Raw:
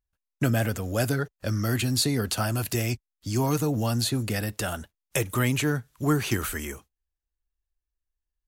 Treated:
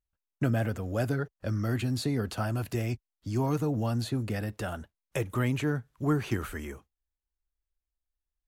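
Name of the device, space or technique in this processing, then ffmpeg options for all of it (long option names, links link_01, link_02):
through cloth: -af "highshelf=frequency=3000:gain=-13,volume=-3dB"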